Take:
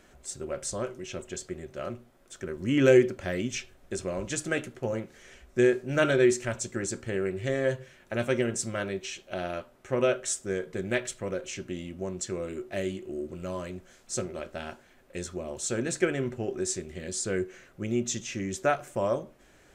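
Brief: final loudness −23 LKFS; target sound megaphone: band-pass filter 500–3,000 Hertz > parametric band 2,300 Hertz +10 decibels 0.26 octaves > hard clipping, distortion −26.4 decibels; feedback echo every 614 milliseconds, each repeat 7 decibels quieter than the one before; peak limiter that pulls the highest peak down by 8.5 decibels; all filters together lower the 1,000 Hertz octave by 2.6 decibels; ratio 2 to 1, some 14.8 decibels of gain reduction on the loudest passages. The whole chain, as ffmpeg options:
ffmpeg -i in.wav -af "equalizer=frequency=1000:width_type=o:gain=-3.5,acompressor=threshold=-43dB:ratio=2,alimiter=level_in=8.5dB:limit=-24dB:level=0:latency=1,volume=-8.5dB,highpass=500,lowpass=3000,equalizer=frequency=2300:width_type=o:width=0.26:gain=10,aecho=1:1:614|1228|1842|2456|3070:0.447|0.201|0.0905|0.0407|0.0183,asoftclip=type=hard:threshold=-35dB,volume=23.5dB" out.wav

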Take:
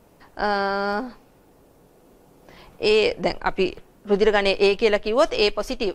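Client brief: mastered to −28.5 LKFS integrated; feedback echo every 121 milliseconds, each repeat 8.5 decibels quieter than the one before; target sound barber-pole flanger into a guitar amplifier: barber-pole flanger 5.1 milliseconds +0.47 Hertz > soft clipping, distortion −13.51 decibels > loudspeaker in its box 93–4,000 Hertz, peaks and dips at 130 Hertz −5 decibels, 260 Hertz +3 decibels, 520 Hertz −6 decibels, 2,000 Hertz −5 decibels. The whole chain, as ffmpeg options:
ffmpeg -i in.wav -filter_complex "[0:a]aecho=1:1:121|242|363|484:0.376|0.143|0.0543|0.0206,asplit=2[link_01][link_02];[link_02]adelay=5.1,afreqshift=0.47[link_03];[link_01][link_03]amix=inputs=2:normalize=1,asoftclip=threshold=-16.5dB,highpass=93,equalizer=frequency=130:width_type=q:width=4:gain=-5,equalizer=frequency=260:width_type=q:width=4:gain=3,equalizer=frequency=520:width_type=q:width=4:gain=-6,equalizer=frequency=2000:width_type=q:width=4:gain=-5,lowpass=frequency=4000:width=0.5412,lowpass=frequency=4000:width=1.3066,volume=-1dB" out.wav

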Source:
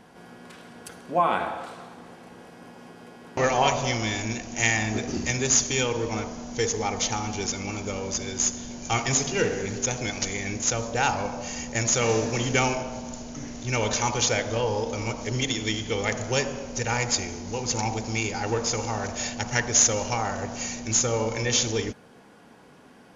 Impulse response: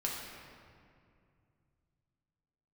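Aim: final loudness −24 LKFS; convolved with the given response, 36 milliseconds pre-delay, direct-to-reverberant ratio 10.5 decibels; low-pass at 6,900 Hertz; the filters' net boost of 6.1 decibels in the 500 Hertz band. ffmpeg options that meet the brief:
-filter_complex "[0:a]lowpass=6900,equalizer=frequency=500:width_type=o:gain=7,asplit=2[link_01][link_02];[1:a]atrim=start_sample=2205,adelay=36[link_03];[link_02][link_03]afir=irnorm=-1:irlink=0,volume=-14.5dB[link_04];[link_01][link_04]amix=inputs=2:normalize=0"

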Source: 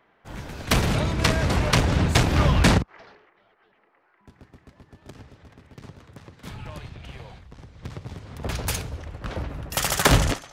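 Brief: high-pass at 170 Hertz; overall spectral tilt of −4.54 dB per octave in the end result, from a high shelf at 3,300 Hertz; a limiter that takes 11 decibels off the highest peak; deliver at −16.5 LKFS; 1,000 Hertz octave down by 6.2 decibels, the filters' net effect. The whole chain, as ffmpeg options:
ffmpeg -i in.wav -af "highpass=170,equalizer=frequency=1000:width_type=o:gain=-7.5,highshelf=frequency=3300:gain=-5.5,volume=15.5dB,alimiter=limit=-4dB:level=0:latency=1" out.wav

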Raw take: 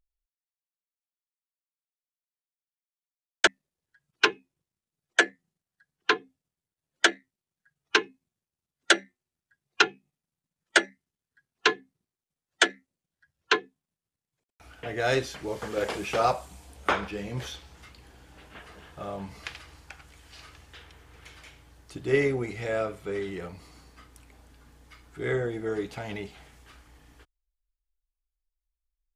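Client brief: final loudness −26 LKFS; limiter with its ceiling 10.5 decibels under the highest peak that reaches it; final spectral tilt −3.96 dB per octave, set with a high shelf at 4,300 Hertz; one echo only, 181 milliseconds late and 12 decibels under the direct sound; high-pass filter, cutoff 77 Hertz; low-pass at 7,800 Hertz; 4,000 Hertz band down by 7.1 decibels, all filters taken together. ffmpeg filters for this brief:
ffmpeg -i in.wav -af "highpass=77,lowpass=7800,equalizer=frequency=4000:width_type=o:gain=-7,highshelf=frequency=4300:gain=-5,alimiter=limit=-16.5dB:level=0:latency=1,aecho=1:1:181:0.251,volume=7.5dB" out.wav

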